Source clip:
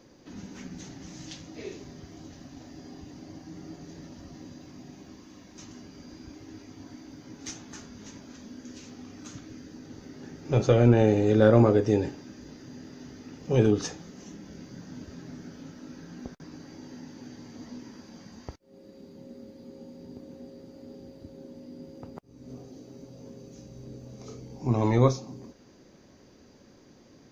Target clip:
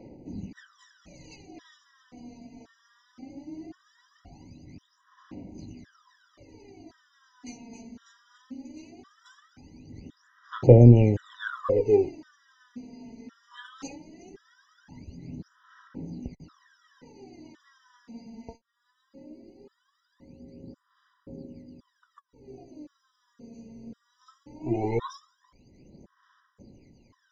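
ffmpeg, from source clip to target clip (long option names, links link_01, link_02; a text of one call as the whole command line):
ffmpeg -i in.wav -af "aphaser=in_gain=1:out_gain=1:delay=4.4:decay=0.79:speed=0.19:type=sinusoidal,aemphasis=mode=reproduction:type=50fm,afftfilt=real='re*gt(sin(2*PI*0.94*pts/sr)*(1-2*mod(floor(b*sr/1024/980),2)),0)':imag='im*gt(sin(2*PI*0.94*pts/sr)*(1-2*mod(floor(b*sr/1024/980),2)),0)':win_size=1024:overlap=0.75,volume=-4.5dB" out.wav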